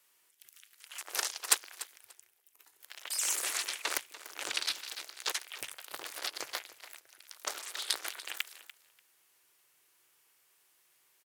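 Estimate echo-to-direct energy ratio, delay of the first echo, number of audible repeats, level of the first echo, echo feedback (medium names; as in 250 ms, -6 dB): -16.0 dB, 292 ms, 2, -16.0 dB, 17%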